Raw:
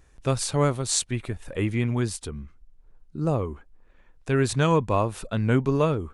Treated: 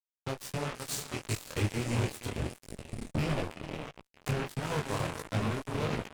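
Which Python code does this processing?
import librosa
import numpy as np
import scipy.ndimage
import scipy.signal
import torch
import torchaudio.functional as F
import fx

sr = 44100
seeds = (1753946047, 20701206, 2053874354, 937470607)

p1 = fx.rattle_buzz(x, sr, strikes_db=-31.0, level_db=-25.0)
p2 = fx.recorder_agc(p1, sr, target_db=-10.5, rise_db_per_s=31.0, max_gain_db=30)
p3 = fx.low_shelf(p2, sr, hz=190.0, db=-3.5)
p4 = p3 + fx.echo_diffused(p3, sr, ms=459, feedback_pct=42, wet_db=-4.0, dry=0)
p5 = fx.rev_freeverb(p4, sr, rt60_s=1.1, hf_ratio=0.85, predelay_ms=5, drr_db=10.5)
p6 = fx.power_curve(p5, sr, exponent=2.0)
p7 = fx.peak_eq(p6, sr, hz=100.0, db=8.5, octaves=1.7)
p8 = fx.fuzz(p7, sr, gain_db=26.0, gate_db=-32.0)
p9 = fx.detune_double(p8, sr, cents=52)
y = p9 * librosa.db_to_amplitude(-6.0)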